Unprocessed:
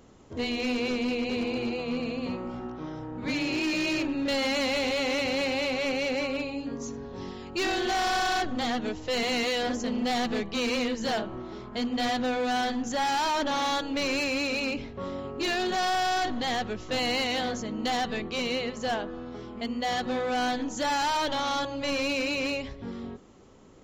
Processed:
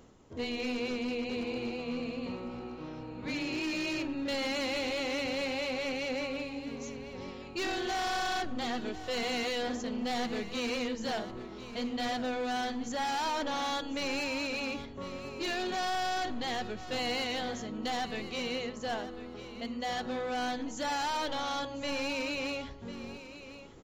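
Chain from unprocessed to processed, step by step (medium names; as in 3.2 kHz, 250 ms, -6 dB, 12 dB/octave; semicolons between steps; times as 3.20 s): feedback comb 480 Hz, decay 0.49 s, mix 50%; reverse; upward compressor, threshold -47 dBFS; reverse; feedback delay 1048 ms, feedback 18%, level -14 dB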